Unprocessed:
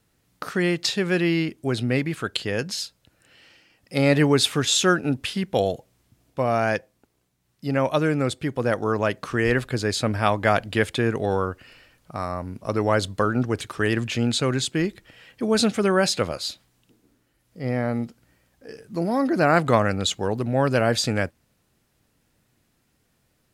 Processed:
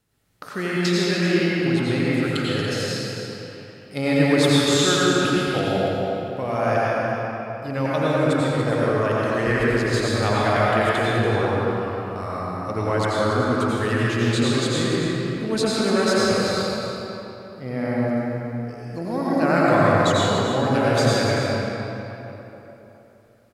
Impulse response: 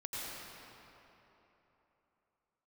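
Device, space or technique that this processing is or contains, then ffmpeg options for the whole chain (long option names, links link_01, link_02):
cave: -filter_complex "[0:a]aecho=1:1:285:0.335[link_01];[1:a]atrim=start_sample=2205[link_02];[link_01][link_02]afir=irnorm=-1:irlink=0"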